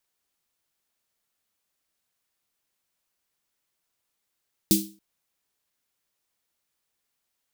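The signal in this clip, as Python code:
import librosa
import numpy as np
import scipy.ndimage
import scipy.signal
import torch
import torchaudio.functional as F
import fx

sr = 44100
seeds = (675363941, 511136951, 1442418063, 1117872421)

y = fx.drum_snare(sr, seeds[0], length_s=0.28, hz=200.0, second_hz=320.0, noise_db=-1.0, noise_from_hz=3400.0, decay_s=0.36, noise_decay_s=0.31)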